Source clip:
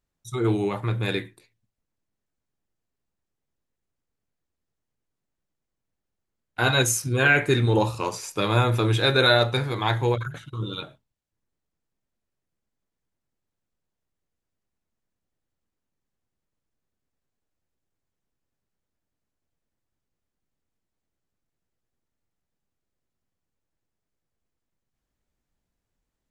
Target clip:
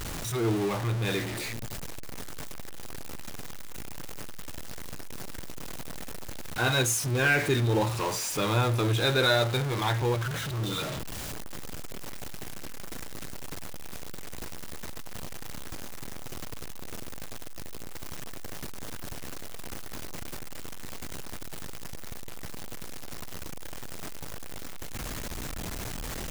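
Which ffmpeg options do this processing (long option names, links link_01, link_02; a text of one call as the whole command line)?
ffmpeg -i in.wav -af "aeval=exprs='val(0)+0.5*0.0841*sgn(val(0))':channel_layout=same,volume=-7dB" out.wav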